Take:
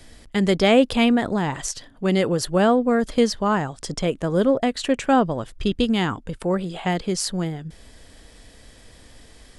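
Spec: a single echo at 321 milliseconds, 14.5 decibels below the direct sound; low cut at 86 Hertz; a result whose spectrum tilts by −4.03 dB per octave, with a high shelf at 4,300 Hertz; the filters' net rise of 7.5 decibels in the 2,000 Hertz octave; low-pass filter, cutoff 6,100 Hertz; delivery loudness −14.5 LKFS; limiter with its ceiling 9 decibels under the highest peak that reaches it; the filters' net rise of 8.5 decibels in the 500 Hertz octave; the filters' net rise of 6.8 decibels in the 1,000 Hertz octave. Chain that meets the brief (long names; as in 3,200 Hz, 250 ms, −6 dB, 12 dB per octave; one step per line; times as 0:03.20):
high-pass filter 86 Hz
low-pass filter 6,100 Hz
parametric band 500 Hz +8.5 dB
parametric band 1,000 Hz +4 dB
parametric band 2,000 Hz +6.5 dB
high-shelf EQ 4,300 Hz +5.5 dB
brickwall limiter −7 dBFS
single-tap delay 321 ms −14.5 dB
level +4 dB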